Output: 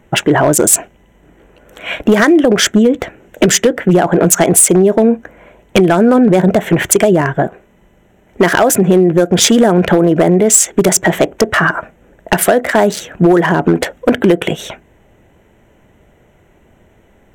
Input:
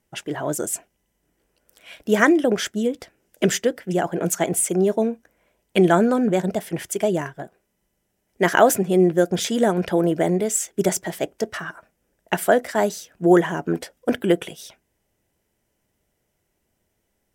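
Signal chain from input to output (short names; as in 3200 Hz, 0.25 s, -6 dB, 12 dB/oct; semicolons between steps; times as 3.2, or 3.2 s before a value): Wiener smoothing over 9 samples; compressor 16:1, threshold -25 dBFS, peak gain reduction 17.5 dB; dynamic EQ 6600 Hz, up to +5 dB, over -41 dBFS, Q 0.8; hard clip -22 dBFS, distortion -16 dB; maximiser +26.5 dB; gain -1.5 dB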